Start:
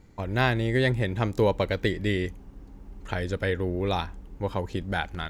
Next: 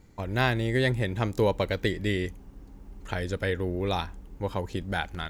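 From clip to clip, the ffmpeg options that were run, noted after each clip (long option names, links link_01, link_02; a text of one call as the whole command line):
ffmpeg -i in.wav -af "highshelf=frequency=6300:gain=6,volume=-1.5dB" out.wav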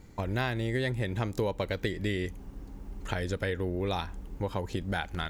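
ffmpeg -i in.wav -af "acompressor=threshold=-33dB:ratio=3,volume=3.5dB" out.wav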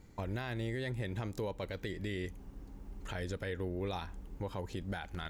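ffmpeg -i in.wav -af "alimiter=limit=-23.5dB:level=0:latency=1:release=18,volume=-5.5dB" out.wav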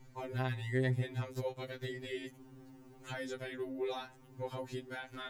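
ffmpeg -i in.wav -af "afftfilt=real='re*2.45*eq(mod(b,6),0)':imag='im*2.45*eq(mod(b,6),0)':win_size=2048:overlap=0.75,volume=2dB" out.wav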